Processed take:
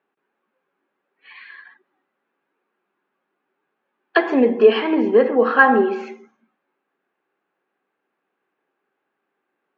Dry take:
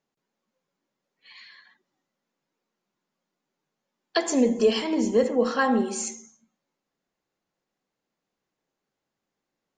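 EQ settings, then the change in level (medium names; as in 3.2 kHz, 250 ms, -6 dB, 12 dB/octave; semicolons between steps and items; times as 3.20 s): distance through air 140 m; cabinet simulation 240–3500 Hz, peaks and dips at 280 Hz +3 dB, 390 Hz +9 dB, 810 Hz +6 dB, 1.2 kHz +7 dB, 1.6 kHz +10 dB, 2.5 kHz +6 dB; +4.0 dB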